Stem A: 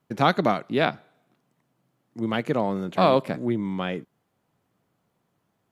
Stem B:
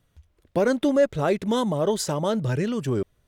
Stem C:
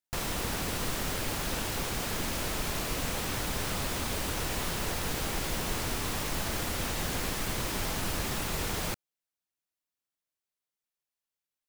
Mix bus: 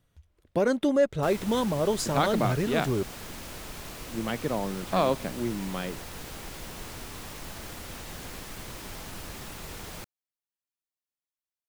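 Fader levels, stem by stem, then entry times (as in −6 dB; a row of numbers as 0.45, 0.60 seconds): −5.5, −3.0, −8.0 decibels; 1.95, 0.00, 1.10 seconds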